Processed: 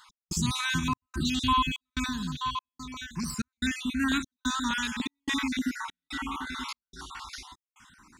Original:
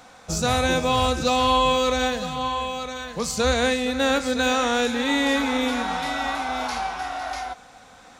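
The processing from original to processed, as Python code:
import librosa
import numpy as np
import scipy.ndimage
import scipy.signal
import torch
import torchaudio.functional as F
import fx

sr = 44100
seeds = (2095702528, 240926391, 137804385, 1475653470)

y = fx.spec_dropout(x, sr, seeds[0], share_pct=38)
y = fx.dynamic_eq(y, sr, hz=160.0, q=0.76, threshold_db=-40.0, ratio=4.0, max_db=4)
y = scipy.signal.sosfilt(scipy.signal.ellip(3, 1.0, 40, [370.0, 940.0], 'bandstop', fs=sr, output='sos'), y)
y = fx.step_gate(y, sr, bpm=145, pattern='x..xxxxx', floor_db=-60.0, edge_ms=4.5)
y = fx.filter_held_notch(y, sr, hz=3.4, low_hz=300.0, high_hz=5100.0)
y = F.gain(torch.from_numpy(y), -2.0).numpy()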